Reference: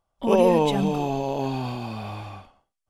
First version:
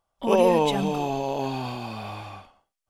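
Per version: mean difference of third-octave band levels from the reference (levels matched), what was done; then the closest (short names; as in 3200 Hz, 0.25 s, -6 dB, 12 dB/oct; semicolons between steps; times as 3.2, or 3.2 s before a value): 2.0 dB: low shelf 390 Hz -6 dB; gain +1.5 dB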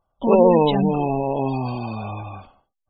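6.5 dB: spectral gate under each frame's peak -25 dB strong; gain +4 dB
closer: first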